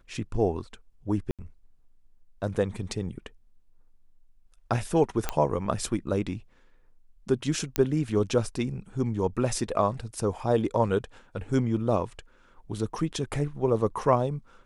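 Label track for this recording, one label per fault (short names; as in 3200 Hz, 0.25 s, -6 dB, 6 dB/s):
1.310000	1.390000	gap 77 ms
5.290000	5.290000	pop -11 dBFS
7.760000	7.760000	pop -8 dBFS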